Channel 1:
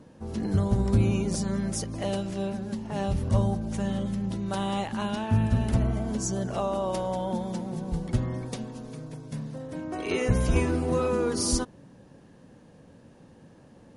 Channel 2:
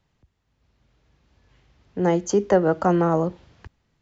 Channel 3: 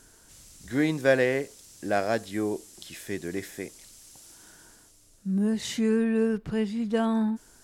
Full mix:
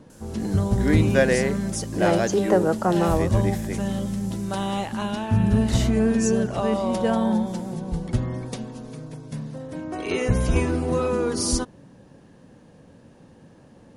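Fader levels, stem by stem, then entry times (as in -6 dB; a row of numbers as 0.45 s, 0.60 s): +2.5 dB, -2.0 dB, +2.0 dB; 0.00 s, 0.00 s, 0.10 s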